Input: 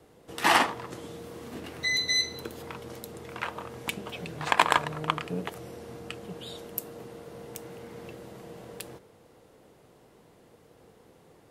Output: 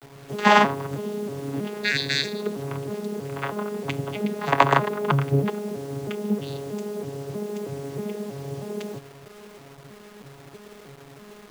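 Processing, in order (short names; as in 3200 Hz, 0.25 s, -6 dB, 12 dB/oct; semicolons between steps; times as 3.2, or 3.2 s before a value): arpeggiated vocoder bare fifth, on C#3, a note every 0.319 s; bit-crush 9-bit; gain +7.5 dB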